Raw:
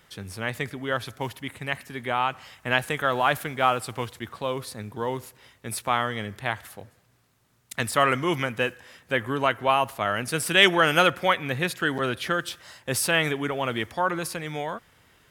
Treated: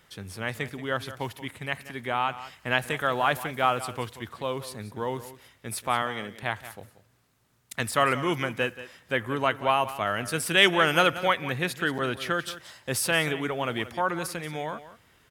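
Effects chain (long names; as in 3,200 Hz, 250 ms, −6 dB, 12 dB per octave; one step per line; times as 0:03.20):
0:06.02–0:06.43: high-pass filter 190 Hz 12 dB per octave
single-tap delay 181 ms −14.5 dB
level −2 dB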